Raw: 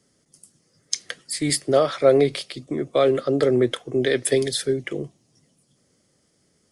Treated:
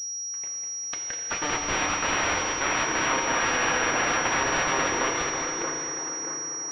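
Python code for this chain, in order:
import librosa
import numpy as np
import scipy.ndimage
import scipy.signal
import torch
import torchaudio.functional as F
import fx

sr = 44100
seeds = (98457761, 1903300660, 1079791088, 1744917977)

y = fx.reverse_delay(x, sr, ms=407, wet_db=-1.0)
y = (np.mod(10.0 ** (18.5 / 20.0) * y + 1.0, 2.0) - 1.0) / 10.0 ** (18.5 / 20.0)
y = fx.highpass(y, sr, hz=930.0, slope=6)
y = fx.echo_split(y, sr, split_hz=1900.0, low_ms=631, high_ms=200, feedback_pct=52, wet_db=-7.5)
y = fx.rev_fdn(y, sr, rt60_s=3.5, lf_ratio=1.0, hf_ratio=0.75, size_ms=19.0, drr_db=0.5)
y = fx.pwm(y, sr, carrier_hz=5700.0)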